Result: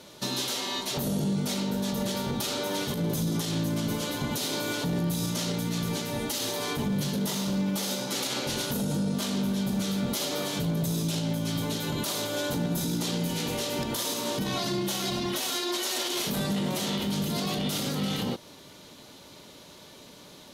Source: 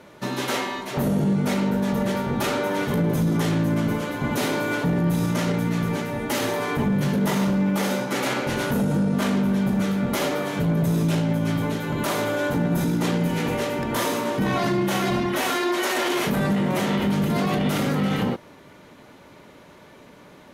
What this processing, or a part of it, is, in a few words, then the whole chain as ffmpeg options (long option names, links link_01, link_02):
over-bright horn tweeter: -af "highshelf=frequency=2800:width_type=q:width=1.5:gain=10.5,alimiter=limit=-17.5dB:level=0:latency=1:release=169,volume=-3dB"